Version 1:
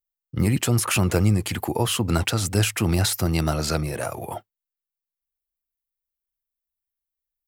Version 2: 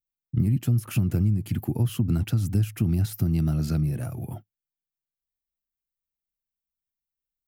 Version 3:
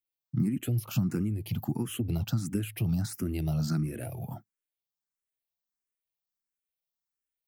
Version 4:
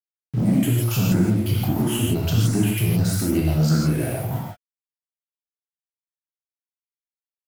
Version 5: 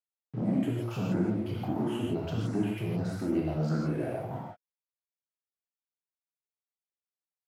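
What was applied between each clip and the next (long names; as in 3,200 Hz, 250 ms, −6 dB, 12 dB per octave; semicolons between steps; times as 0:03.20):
octave-band graphic EQ 125/250/500/1,000/2,000/4,000/8,000 Hz +10/+6/−10/−11/−7/−8/−11 dB; downward compressor, threshold −16 dBFS, peak gain reduction 9 dB; level −3 dB
low-shelf EQ 110 Hz −12 dB; frequency shifter mixed with the dry sound +1.5 Hz; level +2 dB
leveller curve on the samples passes 2; centre clipping without the shift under −39.5 dBFS; reverb whose tail is shaped and stops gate 190 ms flat, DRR −4.5 dB
resonant band-pass 570 Hz, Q 0.61; level −4.5 dB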